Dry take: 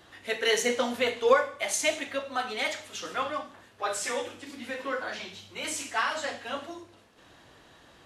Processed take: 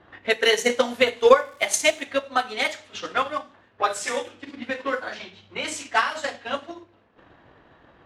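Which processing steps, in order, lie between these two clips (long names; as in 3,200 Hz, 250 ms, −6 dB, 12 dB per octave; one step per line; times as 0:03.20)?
0:01.34–0:02.01: surface crackle 340 per second −40 dBFS
low-pass that shuts in the quiet parts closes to 1,700 Hz, open at −27 dBFS
transient designer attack +8 dB, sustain −5 dB
level +2.5 dB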